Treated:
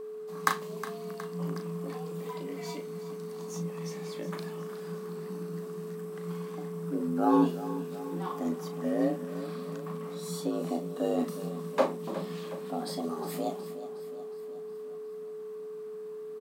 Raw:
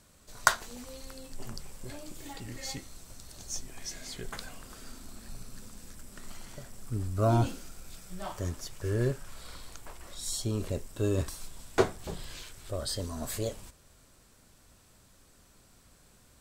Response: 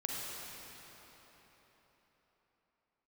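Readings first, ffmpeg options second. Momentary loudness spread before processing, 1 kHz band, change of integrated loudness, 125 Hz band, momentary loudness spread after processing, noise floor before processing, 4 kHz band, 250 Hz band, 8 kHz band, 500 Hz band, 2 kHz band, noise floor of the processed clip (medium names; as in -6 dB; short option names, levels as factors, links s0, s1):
20 LU, +2.5 dB, -0.5 dB, -5.0 dB, 12 LU, -61 dBFS, -5.5 dB, +7.0 dB, -8.5 dB, +4.0 dB, -4.0 dB, -41 dBFS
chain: -filter_complex "[0:a]afreqshift=160,equalizer=f=7100:t=o:w=1.6:g=-10.5,asplit=2[s0][s1];[s1]adelay=36,volume=0.398[s2];[s0][s2]amix=inputs=2:normalize=0,acrossover=split=870|1900[s3][s4][s5];[s4]acompressor=threshold=0.00112:ratio=6[s6];[s3][s6][s5]amix=inputs=3:normalize=0,aecho=1:1:364|728|1092|1456|1820|2184:0.211|0.123|0.0711|0.0412|0.0239|0.0139,aeval=exprs='val(0)+0.0126*sin(2*PI*430*n/s)':c=same,equalizer=f=1100:t=o:w=0.32:g=14.5"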